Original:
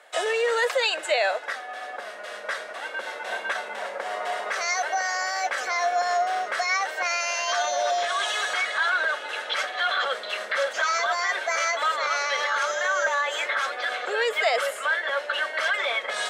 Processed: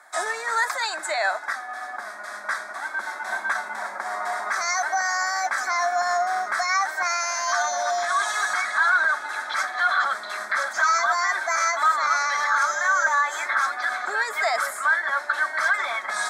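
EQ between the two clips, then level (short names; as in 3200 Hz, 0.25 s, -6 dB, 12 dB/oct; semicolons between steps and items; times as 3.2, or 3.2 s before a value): fixed phaser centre 1200 Hz, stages 4; +5.5 dB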